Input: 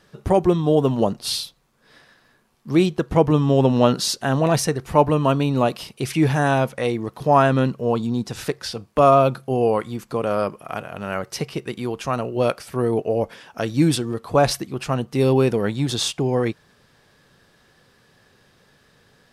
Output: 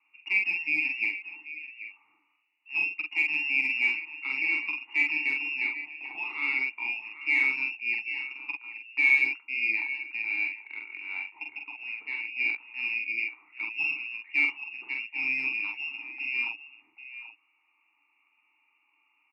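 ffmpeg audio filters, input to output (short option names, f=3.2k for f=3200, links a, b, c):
-filter_complex "[0:a]asettb=1/sr,asplit=3[a][b][c];[a]atrim=end=5.624[d];[b]atrim=start=5.62:end=6.43,asetpts=PTS-STARTPTS,afade=t=in:d=0.004:c=qsin,afade=t=out:st=0.806:d=0.004:c=qsin,tiltshelf=f=970:g=-6[e];[c]atrim=start=6.426[f];[d][e]acrossfade=d=0.004:c1=hsin:c2=qsin[g];[g][f]acrossfade=d=0.004:c1=qsin:c2=hsin,asplit=2[h][i];[i]aecho=0:1:785:0.224[j];[h][j]amix=inputs=2:normalize=0,lowpass=f=2.5k:t=q:w=0.5098,lowpass=f=2.5k:t=q:w=0.6013,lowpass=f=2.5k:t=q:w=0.9,lowpass=f=2.5k:t=q:w=2.563,afreqshift=-2900,asettb=1/sr,asplit=3[k][l][m];[k]atrim=end=0.744[n];[l]atrim=start=0.74:end=1.18,asetpts=PTS-STARTPTS,afade=t=in:d=0.004:c=qsin,afade=t=out:st=0.436:d=0.004:c=qsin,acrusher=bits=6:mix=0:aa=0.5[o];[m]atrim=start=1.176[p];[n][o]acrossfade=d=0.004:c1=hsin:c2=qsin[q];[q][p]acrossfade=d=0.004:c1=qsin:c2=hsin,aeval=exprs='0.944*(cos(1*acos(clip(val(0)/0.944,-1,1)))-cos(1*PI/2))+0.106*(cos(3*acos(clip(val(0)/0.944,-1,1)))-cos(3*PI/2))+0.0944*(cos(4*acos(clip(val(0)/0.944,-1,1)))-cos(4*PI/2))':c=same,volume=9dB,asoftclip=hard,volume=-9dB,asplit=3[r][s][t];[r]bandpass=f=300:t=q:w=8,volume=0dB[u];[s]bandpass=f=870:t=q:w=8,volume=-6dB[v];[t]bandpass=f=2.24k:t=q:w=8,volume=-9dB[w];[u][v][w]amix=inputs=3:normalize=0,equalizer=f=140:w=0.41:g=-14,asplit=2[x][y];[y]adelay=45,volume=-3dB[z];[x][z]amix=inputs=2:normalize=0,volume=5dB"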